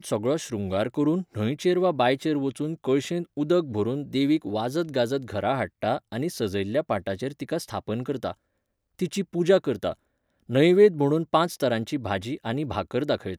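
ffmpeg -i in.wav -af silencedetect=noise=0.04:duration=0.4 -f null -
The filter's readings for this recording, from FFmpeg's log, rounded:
silence_start: 8.31
silence_end: 8.99 | silence_duration: 0.68
silence_start: 9.92
silence_end: 10.50 | silence_duration: 0.58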